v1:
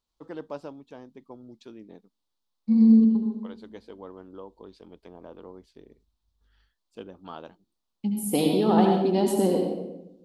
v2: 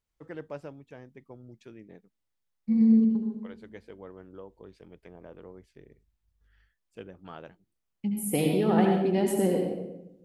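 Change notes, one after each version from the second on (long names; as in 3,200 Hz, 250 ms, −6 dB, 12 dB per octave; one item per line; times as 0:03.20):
master: add octave-band graphic EQ 125/250/1,000/2,000/4,000 Hz +7/−6/−8/+9/−11 dB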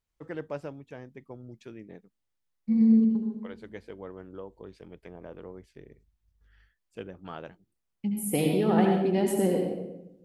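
first voice +3.5 dB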